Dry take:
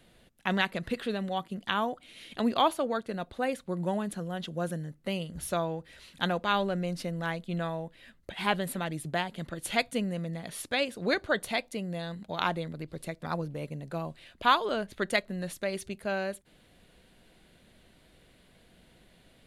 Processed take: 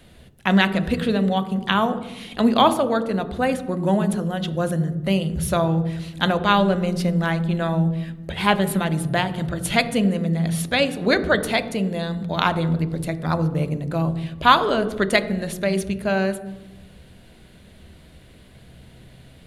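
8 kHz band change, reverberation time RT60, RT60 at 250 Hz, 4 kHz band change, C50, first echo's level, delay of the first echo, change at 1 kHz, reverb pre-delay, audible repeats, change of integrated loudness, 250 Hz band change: +8.5 dB, 1.1 s, 1.5 s, +8.5 dB, 12.5 dB, no echo audible, no echo audible, +9.0 dB, 3 ms, no echo audible, +10.5 dB, +13.0 dB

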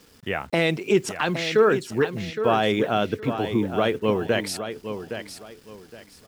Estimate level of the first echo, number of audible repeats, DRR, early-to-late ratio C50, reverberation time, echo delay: −9.5 dB, 3, no reverb audible, no reverb audible, no reverb audible, 815 ms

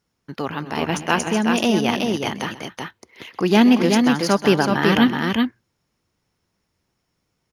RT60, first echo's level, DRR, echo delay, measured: no reverb audible, −16.0 dB, no reverb audible, 129 ms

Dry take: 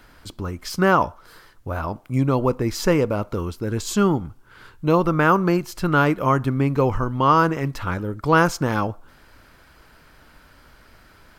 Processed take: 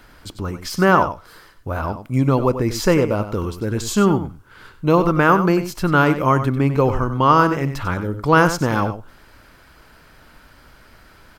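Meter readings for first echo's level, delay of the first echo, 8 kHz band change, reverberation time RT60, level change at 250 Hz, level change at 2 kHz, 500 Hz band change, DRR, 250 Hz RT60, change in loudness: −11.0 dB, 95 ms, +3.0 dB, no reverb audible, +3.0 dB, +3.0 dB, +3.0 dB, no reverb audible, no reverb audible, +3.0 dB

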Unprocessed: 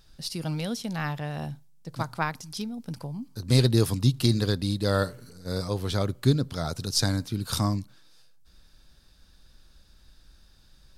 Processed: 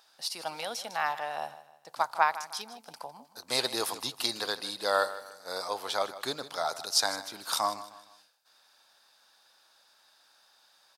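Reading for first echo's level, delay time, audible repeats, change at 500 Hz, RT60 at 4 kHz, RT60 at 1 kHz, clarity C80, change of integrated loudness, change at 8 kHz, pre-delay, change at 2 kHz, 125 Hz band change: −15.0 dB, 155 ms, 3, −3.5 dB, no reverb audible, no reverb audible, no reverb audible, −3.5 dB, 0.0 dB, no reverb audible, +2.0 dB, −31.0 dB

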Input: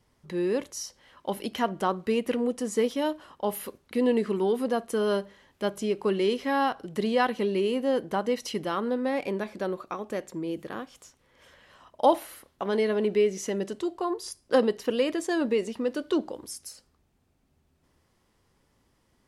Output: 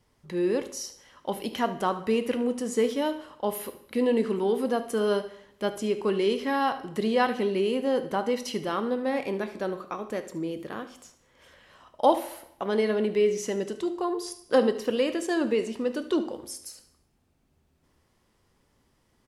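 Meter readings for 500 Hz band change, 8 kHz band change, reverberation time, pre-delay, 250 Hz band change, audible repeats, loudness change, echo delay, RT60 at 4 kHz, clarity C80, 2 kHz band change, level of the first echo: +0.5 dB, +0.5 dB, 0.75 s, 7 ms, +0.5 dB, 1, +0.5 dB, 74 ms, 0.70 s, 16.0 dB, +0.5 dB, −16.0 dB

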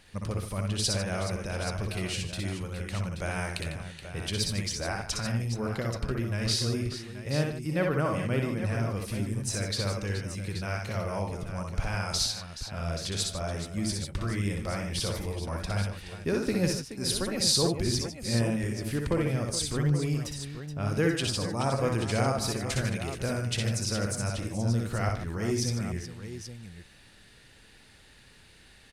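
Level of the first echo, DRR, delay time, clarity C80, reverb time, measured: −4.5 dB, no reverb audible, 60 ms, no reverb audible, no reverb audible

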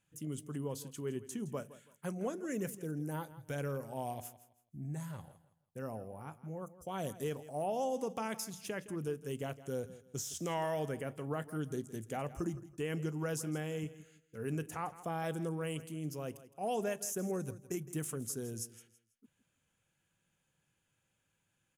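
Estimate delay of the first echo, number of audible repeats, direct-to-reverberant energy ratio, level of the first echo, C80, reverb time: 164 ms, 2, no reverb audible, −16.0 dB, no reverb audible, no reverb audible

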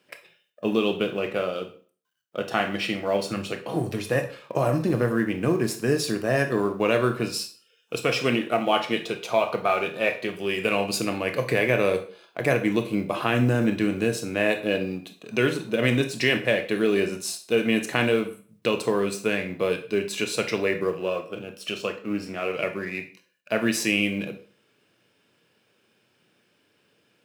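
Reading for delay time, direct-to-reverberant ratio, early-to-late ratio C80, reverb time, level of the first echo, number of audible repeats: no echo audible, 7.0 dB, 16.5 dB, 0.40 s, no echo audible, no echo audible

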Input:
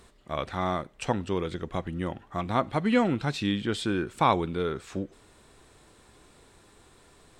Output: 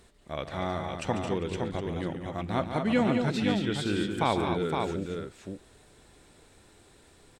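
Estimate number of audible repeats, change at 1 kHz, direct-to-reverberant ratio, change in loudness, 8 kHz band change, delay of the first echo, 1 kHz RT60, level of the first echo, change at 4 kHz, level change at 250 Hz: 3, −3.0 dB, no reverb audible, −1.0 dB, 0.0 dB, 144 ms, no reverb audible, −10.0 dB, 0.0 dB, 0.0 dB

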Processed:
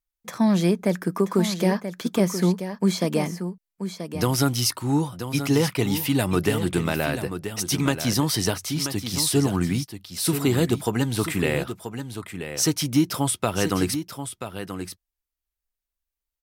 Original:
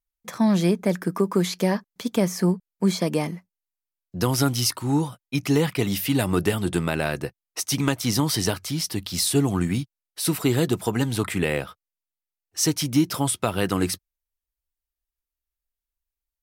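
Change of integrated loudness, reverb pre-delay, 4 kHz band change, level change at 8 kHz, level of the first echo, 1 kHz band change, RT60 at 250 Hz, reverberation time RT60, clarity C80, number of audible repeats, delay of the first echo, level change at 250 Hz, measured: 0.0 dB, no reverb audible, +0.5 dB, +0.5 dB, −9.5 dB, +0.5 dB, no reverb audible, no reverb audible, no reverb audible, 1, 982 ms, +0.5 dB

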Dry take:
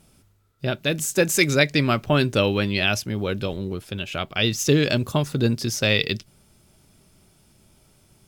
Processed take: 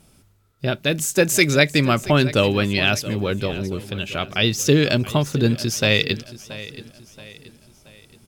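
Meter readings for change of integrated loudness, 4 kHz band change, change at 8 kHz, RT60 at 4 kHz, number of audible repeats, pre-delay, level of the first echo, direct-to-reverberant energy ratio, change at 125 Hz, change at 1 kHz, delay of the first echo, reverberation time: +2.5 dB, +2.5 dB, +2.5 dB, no reverb audible, 3, no reverb audible, −16.5 dB, no reverb audible, +2.5 dB, +2.5 dB, 677 ms, no reverb audible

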